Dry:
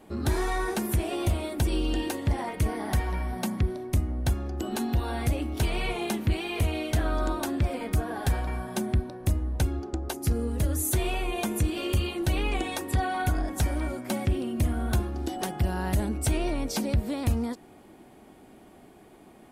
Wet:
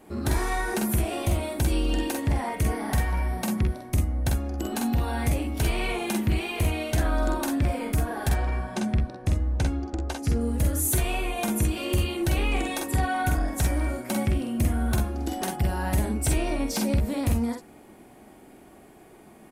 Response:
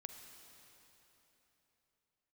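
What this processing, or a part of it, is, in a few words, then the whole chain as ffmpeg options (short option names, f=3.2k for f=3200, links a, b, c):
exciter from parts: -filter_complex "[0:a]asettb=1/sr,asplit=3[a][b][c];[a]atrim=end=8.294[d];[b]atrim=start=8.29:end=10.41,asetpts=PTS-STARTPTS,afade=t=in:d=0.004:c=qsin,afade=t=out:st=2.116:d=0.004:c=qsin,lowpass=6.3k[e];[c]atrim=start=10.406[f];[d][e]acrossfade=d=0.004:c1=hsin:c2=qsin[g];[g][f]acrossfade=d=0.004:c1=qsin:c2=hsin,equalizer=f=2.9k:w=1.5:g=2.5,aecho=1:1:47|61:0.631|0.299,asplit=2[h][i];[i]highpass=f=3.3k:p=1,asoftclip=type=tanh:threshold=-29dB,highpass=f=2.5k:w=0.5412,highpass=f=2.5k:w=1.3066,volume=-5dB[j];[h][j]amix=inputs=2:normalize=0"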